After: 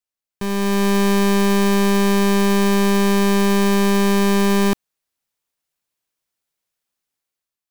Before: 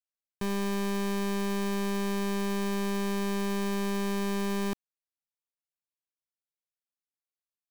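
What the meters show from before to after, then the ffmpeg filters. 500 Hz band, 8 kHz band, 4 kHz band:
+13.5 dB, +13.5 dB, +13.5 dB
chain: -af "dynaudnorm=framelen=140:gausssize=9:maxgain=9.5dB,volume=4.5dB"

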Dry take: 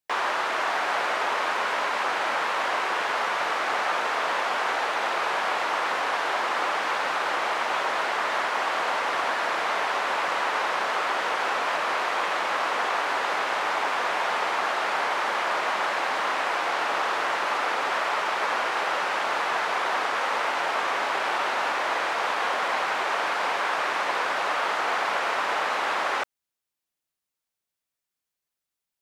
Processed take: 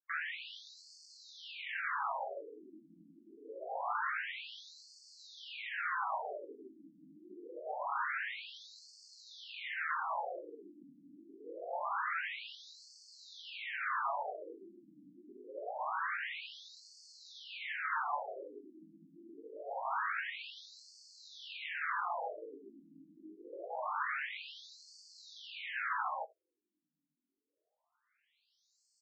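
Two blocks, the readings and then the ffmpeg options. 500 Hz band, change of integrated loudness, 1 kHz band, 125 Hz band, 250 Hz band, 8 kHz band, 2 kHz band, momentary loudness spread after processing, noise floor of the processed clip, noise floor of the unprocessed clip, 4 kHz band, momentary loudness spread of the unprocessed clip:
−16.5 dB, −14.0 dB, −16.0 dB, can't be measured, −14.5 dB, −21.5 dB, −15.0 dB, 20 LU, below −85 dBFS, below −85 dBFS, −17.0 dB, 0 LU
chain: -filter_complex "[0:a]acrossover=split=4100[link_01][link_02];[link_02]acompressor=threshold=-56dB:ratio=4:attack=1:release=60[link_03];[link_01][link_03]amix=inputs=2:normalize=0,equalizer=frequency=1500:width_type=o:width=0.77:gain=3,areverse,acompressor=mode=upward:threshold=-42dB:ratio=2.5,areverse,flanger=delay=5.6:depth=2:regen=38:speed=0.68:shape=triangular,aecho=1:1:76:0.0668,flanger=delay=18:depth=3:speed=0.31,asplit=2[link_04][link_05];[link_05]asoftclip=type=hard:threshold=-33dB,volume=-4dB[link_06];[link_04][link_06]amix=inputs=2:normalize=0,afftfilt=real='re*between(b*sr/1024,230*pow(6100/230,0.5+0.5*sin(2*PI*0.25*pts/sr))/1.41,230*pow(6100/230,0.5+0.5*sin(2*PI*0.25*pts/sr))*1.41)':imag='im*between(b*sr/1024,230*pow(6100/230,0.5+0.5*sin(2*PI*0.25*pts/sr))/1.41,230*pow(6100/230,0.5+0.5*sin(2*PI*0.25*pts/sr))*1.41)':win_size=1024:overlap=0.75,volume=-4.5dB"

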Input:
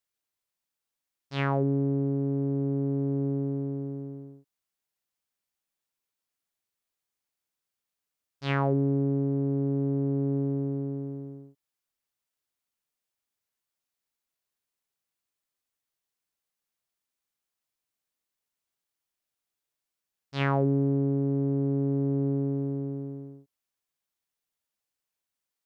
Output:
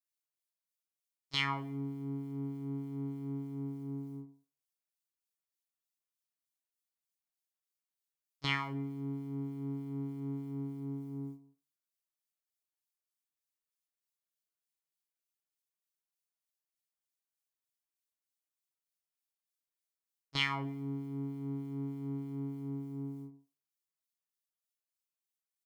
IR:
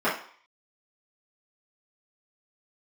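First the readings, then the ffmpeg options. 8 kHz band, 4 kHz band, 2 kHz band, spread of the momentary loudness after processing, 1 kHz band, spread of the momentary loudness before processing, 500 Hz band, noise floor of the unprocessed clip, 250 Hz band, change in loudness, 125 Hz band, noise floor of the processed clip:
can't be measured, +7.0 dB, −0.5 dB, 9 LU, −6.0 dB, 13 LU, −18.5 dB, below −85 dBFS, −10.5 dB, −10.5 dB, −12.5 dB, below −85 dBFS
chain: -filter_complex "[0:a]highshelf=frequency=2900:gain=10.5,agate=range=-16dB:threshold=-39dB:ratio=16:detection=peak,aecho=1:1:6.3:0.84,acrossover=split=1700[link_01][link_02];[link_01]acompressor=threshold=-36dB:ratio=6[link_03];[link_03][link_02]amix=inputs=2:normalize=0,acrossover=split=2000[link_04][link_05];[link_04]aeval=exprs='val(0)*(1-0.5/2+0.5/2*cos(2*PI*3.3*n/s))':channel_layout=same[link_06];[link_05]aeval=exprs='val(0)*(1-0.5/2-0.5/2*cos(2*PI*3.3*n/s))':channel_layout=same[link_07];[link_06][link_07]amix=inputs=2:normalize=0,asplit=2[link_08][link_09];[1:a]atrim=start_sample=2205[link_10];[link_09][link_10]afir=irnorm=-1:irlink=0,volume=-22.5dB[link_11];[link_08][link_11]amix=inputs=2:normalize=0"

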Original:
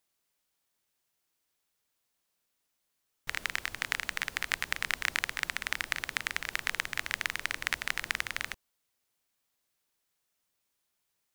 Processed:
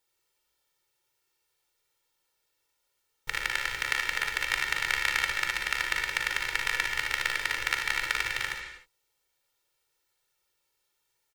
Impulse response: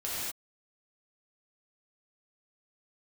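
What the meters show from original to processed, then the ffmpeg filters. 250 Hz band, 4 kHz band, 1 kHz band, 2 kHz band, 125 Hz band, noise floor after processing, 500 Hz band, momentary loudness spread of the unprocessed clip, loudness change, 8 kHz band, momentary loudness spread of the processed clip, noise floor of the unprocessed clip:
0.0 dB, +4.5 dB, +6.0 dB, +5.0 dB, +3.0 dB, −78 dBFS, +5.0 dB, 4 LU, +5.0 dB, +3.0 dB, 5 LU, −81 dBFS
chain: -filter_complex "[0:a]equalizer=frequency=76:width=3.4:gain=-9.5,aecho=1:1:2.2:0.96,aecho=1:1:42|58|74:0.335|0.422|0.266,asplit=2[link_01][link_02];[1:a]atrim=start_sample=2205,lowpass=6800[link_03];[link_02][link_03]afir=irnorm=-1:irlink=0,volume=-9dB[link_04];[link_01][link_04]amix=inputs=2:normalize=0,volume=-2dB"

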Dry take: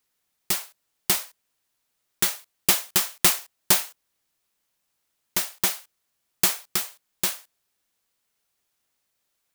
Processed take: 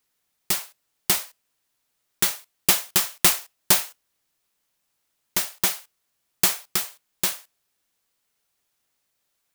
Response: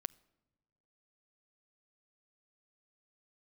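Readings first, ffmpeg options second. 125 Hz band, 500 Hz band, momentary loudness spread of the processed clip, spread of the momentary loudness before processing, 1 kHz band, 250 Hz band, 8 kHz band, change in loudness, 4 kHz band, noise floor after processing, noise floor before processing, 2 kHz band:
+1.5 dB, +1.0 dB, 12 LU, 12 LU, +1.0 dB, +1.0 dB, +1.0 dB, +1.0 dB, +1.0 dB, −75 dBFS, −77 dBFS, +1.0 dB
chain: -filter_complex "[0:a]asplit=2[link_01][link_02];[1:a]atrim=start_sample=2205,atrim=end_sample=3969[link_03];[link_02][link_03]afir=irnorm=-1:irlink=0,volume=19dB[link_04];[link_01][link_04]amix=inputs=2:normalize=0,volume=-16.5dB"

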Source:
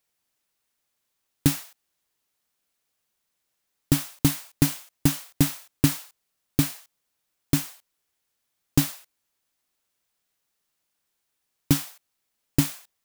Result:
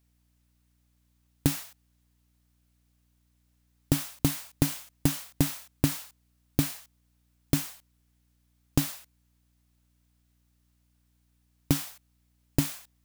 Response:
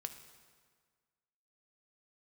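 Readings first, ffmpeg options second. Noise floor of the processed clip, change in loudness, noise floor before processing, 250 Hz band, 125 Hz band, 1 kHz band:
−69 dBFS, −4.5 dB, −79 dBFS, −4.5 dB, −4.0 dB, −2.5 dB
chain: -af "acompressor=threshold=-19dB:ratio=6,aeval=exprs='val(0)+0.000398*(sin(2*PI*60*n/s)+sin(2*PI*2*60*n/s)/2+sin(2*PI*3*60*n/s)/3+sin(2*PI*4*60*n/s)/4+sin(2*PI*5*60*n/s)/5)':channel_layout=same"

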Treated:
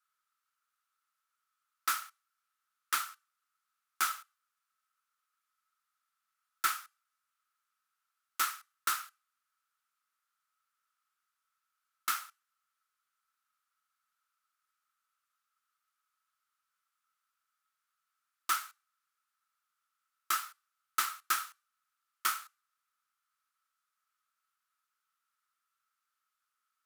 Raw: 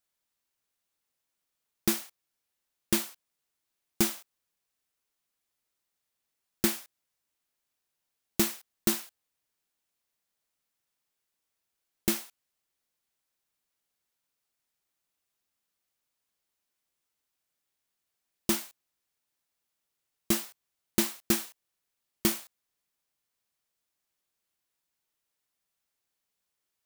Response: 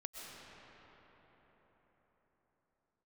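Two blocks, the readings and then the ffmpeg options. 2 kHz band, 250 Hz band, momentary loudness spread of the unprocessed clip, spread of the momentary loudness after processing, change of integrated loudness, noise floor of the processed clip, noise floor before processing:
+2.0 dB, −31.5 dB, 15 LU, 12 LU, −4.5 dB, below −85 dBFS, −84 dBFS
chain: -filter_complex "[0:a]aeval=exprs='clip(val(0),-1,0.1)':channel_layout=same,highpass=frequency=1300:width_type=q:width=14[link_01];[1:a]atrim=start_sample=2205,atrim=end_sample=3969,asetrate=27342,aresample=44100[link_02];[link_01][link_02]afir=irnorm=-1:irlink=0,volume=-1dB"

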